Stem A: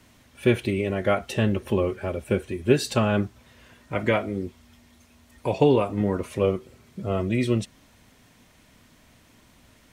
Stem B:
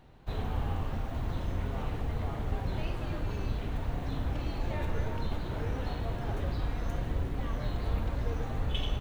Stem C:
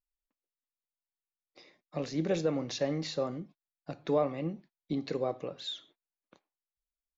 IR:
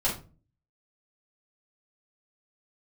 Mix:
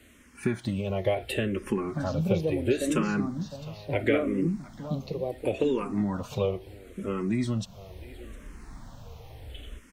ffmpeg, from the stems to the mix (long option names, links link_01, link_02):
-filter_complex "[0:a]acompressor=threshold=-24dB:ratio=4,volume=3dB,asplit=2[link_01][link_02];[link_02]volume=-20dB[link_03];[1:a]adelay=800,volume=-9.5dB,afade=type=in:start_time=7.67:duration=0.49:silence=0.375837[link_04];[2:a]equalizer=frequency=200:width_type=o:width=1.5:gain=13.5,volume=-2dB,asplit=2[link_05][link_06];[link_06]volume=-10dB[link_07];[link_03][link_07]amix=inputs=2:normalize=0,aecho=0:1:707:1[link_08];[link_01][link_04][link_05][link_08]amix=inputs=4:normalize=0,asplit=2[link_09][link_10];[link_10]afreqshift=-0.73[link_11];[link_09][link_11]amix=inputs=2:normalize=1"